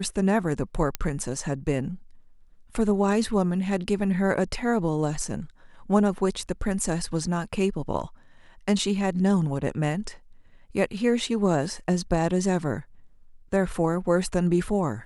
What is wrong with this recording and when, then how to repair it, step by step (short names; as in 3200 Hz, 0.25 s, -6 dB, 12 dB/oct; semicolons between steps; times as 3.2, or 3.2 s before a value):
0.95 pop -11 dBFS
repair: de-click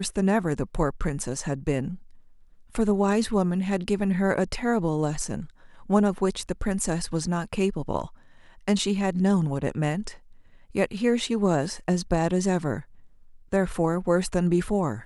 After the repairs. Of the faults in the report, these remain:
none